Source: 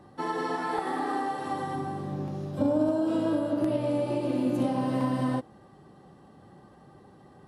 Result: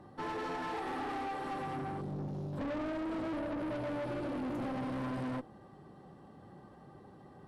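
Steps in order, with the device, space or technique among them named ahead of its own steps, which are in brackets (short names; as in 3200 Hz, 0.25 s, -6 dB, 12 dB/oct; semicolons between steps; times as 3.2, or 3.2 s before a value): 2.01–2.53 bell 1300 Hz -12 dB 1.3 oct; tube preamp driven hard (tube stage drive 35 dB, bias 0.4; high shelf 3900 Hz -7 dB)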